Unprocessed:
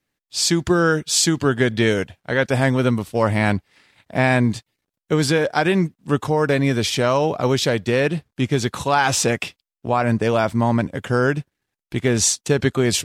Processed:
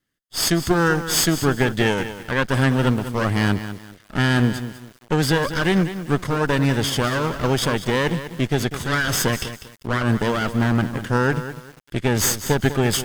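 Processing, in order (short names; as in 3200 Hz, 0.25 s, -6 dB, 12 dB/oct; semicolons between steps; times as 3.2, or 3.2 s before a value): minimum comb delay 0.61 ms; lo-fi delay 0.198 s, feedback 35%, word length 6-bit, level -11 dB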